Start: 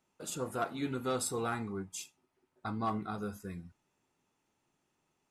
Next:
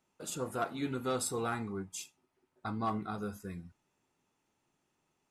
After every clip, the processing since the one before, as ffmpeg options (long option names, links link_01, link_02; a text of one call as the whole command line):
ffmpeg -i in.wav -af anull out.wav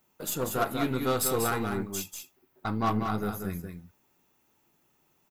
ffmpeg -i in.wav -af "aexciter=amount=9.6:drive=2.6:freq=12000,aeval=exprs='0.0944*(cos(1*acos(clip(val(0)/0.0944,-1,1)))-cos(1*PI/2))+0.0237*(cos(2*acos(clip(val(0)/0.0944,-1,1)))-cos(2*PI/2))+0.00668*(cos(8*acos(clip(val(0)/0.0944,-1,1)))-cos(8*PI/2))':channel_layout=same,aecho=1:1:191:0.501,volume=6dB" out.wav